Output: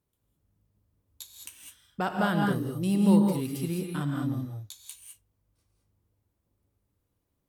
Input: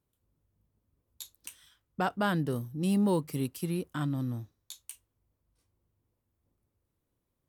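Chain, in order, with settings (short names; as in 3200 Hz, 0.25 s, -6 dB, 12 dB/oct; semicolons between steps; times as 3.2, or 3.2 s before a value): non-linear reverb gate 0.23 s rising, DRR 1.5 dB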